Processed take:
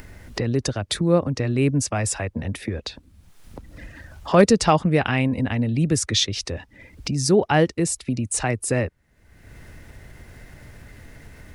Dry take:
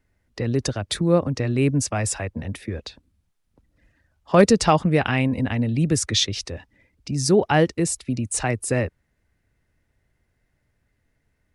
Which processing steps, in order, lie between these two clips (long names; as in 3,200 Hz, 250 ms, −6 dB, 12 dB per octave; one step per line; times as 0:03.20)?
upward compression, threshold −21 dBFS